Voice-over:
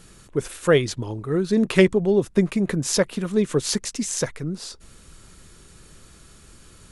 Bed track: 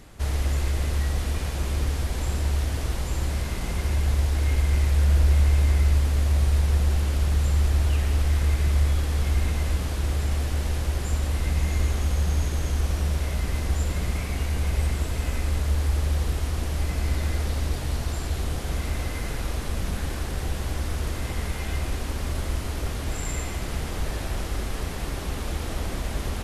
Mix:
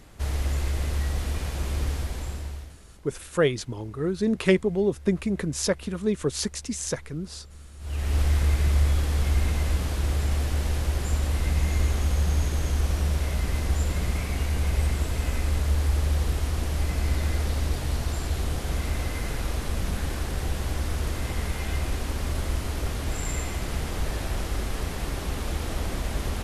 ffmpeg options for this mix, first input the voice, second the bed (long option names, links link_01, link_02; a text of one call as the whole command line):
ffmpeg -i stem1.wav -i stem2.wav -filter_complex "[0:a]adelay=2700,volume=-4.5dB[link_01];[1:a]volume=23dB,afade=type=out:start_time=1.91:duration=0.87:silence=0.0707946,afade=type=in:start_time=7.79:duration=0.4:silence=0.0562341[link_02];[link_01][link_02]amix=inputs=2:normalize=0" out.wav